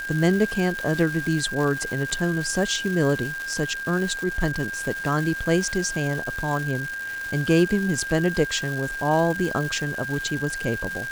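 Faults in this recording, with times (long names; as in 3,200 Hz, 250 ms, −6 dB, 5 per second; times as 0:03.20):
surface crackle 590 per second −29 dBFS
whistle 1,600 Hz −29 dBFS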